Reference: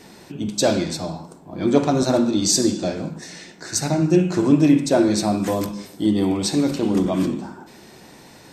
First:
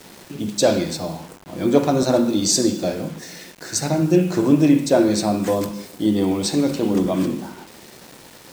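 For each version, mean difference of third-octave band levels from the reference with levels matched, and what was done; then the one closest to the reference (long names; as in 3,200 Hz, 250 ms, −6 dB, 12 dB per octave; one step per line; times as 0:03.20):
3.0 dB: high-pass filter 43 Hz 6 dB per octave
parametric band 510 Hz +4.5 dB 0.36 octaves
bit reduction 7 bits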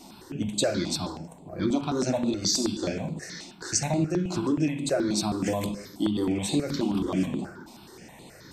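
4.0 dB: dynamic equaliser 3,100 Hz, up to +4 dB, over −40 dBFS, Q 0.81
downward compressor 5 to 1, threshold −20 dBFS, peak gain reduction 10 dB
step-sequenced phaser 9.4 Hz 460–5,500 Hz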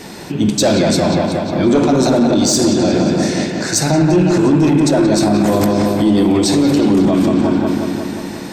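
6.0 dB: soft clipping −10.5 dBFS, distortion −16 dB
on a send: delay with a low-pass on its return 179 ms, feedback 68%, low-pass 3,000 Hz, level −5 dB
on the sum: boost into a limiter +17 dB
level −4.5 dB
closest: first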